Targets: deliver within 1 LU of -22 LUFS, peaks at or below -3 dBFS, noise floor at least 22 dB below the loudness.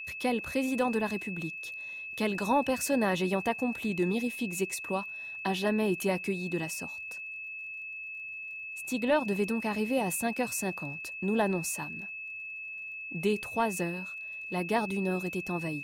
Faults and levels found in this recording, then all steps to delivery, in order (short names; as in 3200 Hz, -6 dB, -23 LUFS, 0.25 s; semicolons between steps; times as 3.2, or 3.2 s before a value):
ticks 31/s; steady tone 2600 Hz; tone level -38 dBFS; loudness -31.5 LUFS; peak -15.5 dBFS; loudness target -22.0 LUFS
-> de-click; notch 2600 Hz, Q 30; gain +9.5 dB